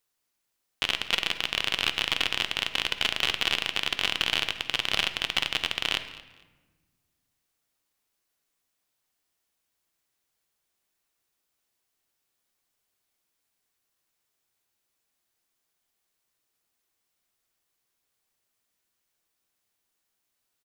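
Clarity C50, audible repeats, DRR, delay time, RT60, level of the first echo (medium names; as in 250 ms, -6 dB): 11.0 dB, 2, 8.5 dB, 227 ms, 1.3 s, -20.0 dB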